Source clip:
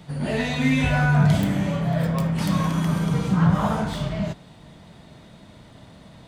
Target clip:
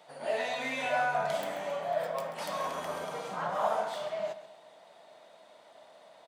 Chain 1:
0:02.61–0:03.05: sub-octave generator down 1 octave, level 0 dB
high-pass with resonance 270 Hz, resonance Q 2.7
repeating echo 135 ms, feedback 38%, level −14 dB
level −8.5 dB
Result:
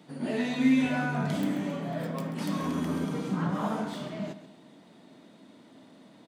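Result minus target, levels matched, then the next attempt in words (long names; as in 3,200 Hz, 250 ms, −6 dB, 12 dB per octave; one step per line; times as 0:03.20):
250 Hz band +17.5 dB
0:02.61–0:03.05: sub-octave generator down 1 octave, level 0 dB
high-pass with resonance 630 Hz, resonance Q 2.7
repeating echo 135 ms, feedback 38%, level −14 dB
level −8.5 dB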